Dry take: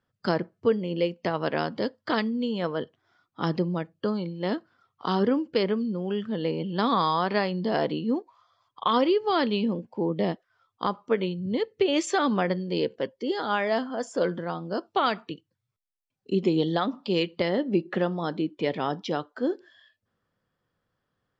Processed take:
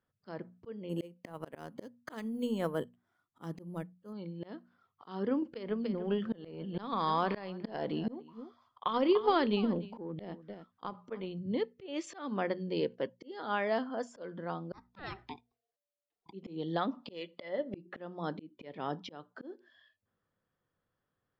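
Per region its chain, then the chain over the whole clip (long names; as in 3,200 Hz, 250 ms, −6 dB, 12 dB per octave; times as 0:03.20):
0:00.89–0:04.13: low-shelf EQ 320 Hz +3.5 dB + transient designer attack +1 dB, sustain −6 dB + bad sample-rate conversion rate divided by 4×, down none, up hold
0:05.42–0:11.39: transient designer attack +11 dB, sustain +6 dB + single-tap delay 294 ms −18.5 dB
0:14.73–0:16.33: high-shelf EQ 4,000 Hz +9 dB + ring modulation 580 Hz
0:17.10–0:17.74: low-shelf EQ 250 Hz −11 dB + hollow resonant body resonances 580/2,000/3,400 Hz, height 12 dB
whole clip: high-shelf EQ 5,800 Hz −12 dB; mains-hum notches 60/120/180/240 Hz; volume swells 342 ms; level −5.5 dB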